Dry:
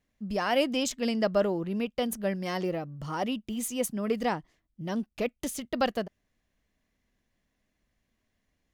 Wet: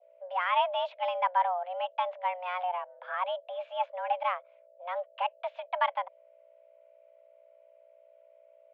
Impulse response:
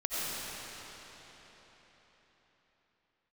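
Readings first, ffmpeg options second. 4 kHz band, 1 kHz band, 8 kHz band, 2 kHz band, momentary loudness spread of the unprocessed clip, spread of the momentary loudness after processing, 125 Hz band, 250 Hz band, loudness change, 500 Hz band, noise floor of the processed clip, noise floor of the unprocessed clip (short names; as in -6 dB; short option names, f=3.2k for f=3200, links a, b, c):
-4.5 dB, +7.0 dB, under -40 dB, -0.5 dB, 10 LU, 10 LU, under -40 dB, under -40 dB, -1.5 dB, -4.5 dB, -60 dBFS, -79 dBFS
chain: -af "aeval=exprs='val(0)+0.00562*(sin(2*PI*60*n/s)+sin(2*PI*2*60*n/s)/2+sin(2*PI*3*60*n/s)/3+sin(2*PI*4*60*n/s)/4+sin(2*PI*5*60*n/s)/5)':c=same,adynamicequalizer=threshold=0.00708:dfrequency=1300:dqfactor=1:tfrequency=1300:tqfactor=1:attack=5:release=100:ratio=0.375:range=2.5:mode=cutabove:tftype=bell,highpass=f=240:t=q:w=0.5412,highpass=f=240:t=q:w=1.307,lowpass=f=2.7k:t=q:w=0.5176,lowpass=f=2.7k:t=q:w=0.7071,lowpass=f=2.7k:t=q:w=1.932,afreqshift=360"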